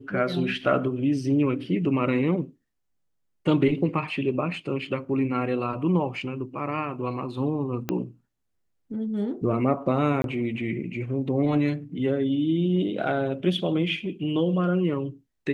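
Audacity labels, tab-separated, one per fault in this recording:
7.890000	7.890000	pop -12 dBFS
10.220000	10.240000	dropout 22 ms

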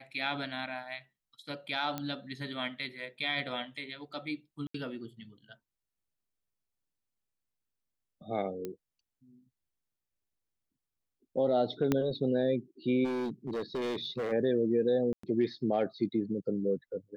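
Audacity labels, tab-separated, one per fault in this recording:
1.980000	1.980000	pop -20 dBFS
4.670000	4.740000	dropout 74 ms
8.650000	8.650000	pop -24 dBFS
11.920000	11.920000	pop -14 dBFS
13.040000	14.330000	clipped -30.5 dBFS
15.130000	15.230000	dropout 104 ms

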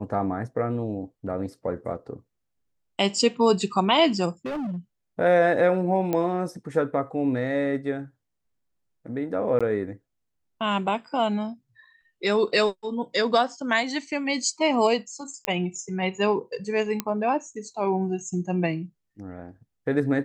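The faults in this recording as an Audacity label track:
4.450000	4.780000	clipped -27.5 dBFS
6.130000	6.130000	pop -13 dBFS
9.590000	9.610000	dropout 16 ms
15.450000	15.450000	pop -9 dBFS
17.000000	17.000000	pop -10 dBFS

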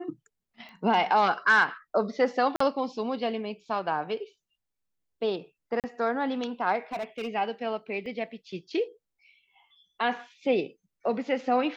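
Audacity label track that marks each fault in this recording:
0.690000	0.690000	pop -34 dBFS
2.560000	2.600000	dropout 44 ms
5.800000	5.840000	dropout 38 ms
6.920000	7.290000	clipped -28.5 dBFS
8.060000	8.060000	dropout 2.3 ms

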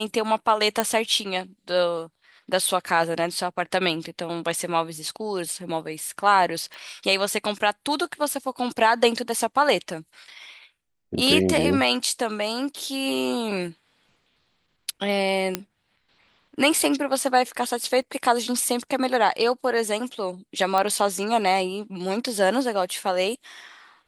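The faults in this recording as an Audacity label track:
0.800000	0.800000	pop -6 dBFS
6.740000	6.740000	pop
15.550000	15.550000	pop -7 dBFS
18.020000	18.020000	dropout 3.3 ms
20.780000	20.780000	pop -11 dBFS

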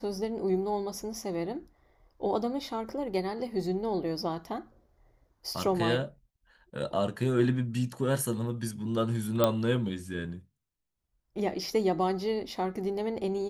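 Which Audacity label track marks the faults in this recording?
9.440000	9.440000	pop -10 dBFS

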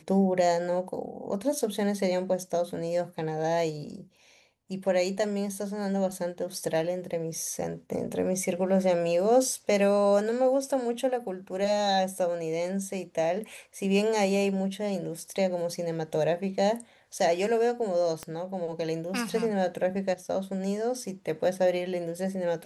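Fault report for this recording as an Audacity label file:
18.230000	18.230000	pop -21 dBFS

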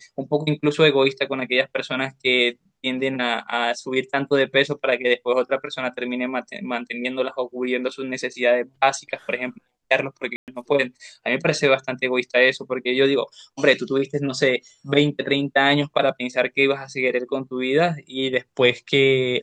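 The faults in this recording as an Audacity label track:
10.360000	10.480000	dropout 118 ms

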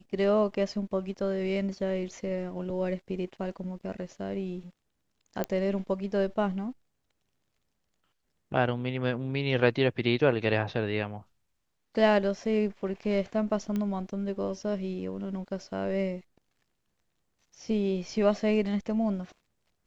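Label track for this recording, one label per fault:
5.440000	5.440000	pop -15 dBFS
13.760000	13.760000	pop -20 dBFS

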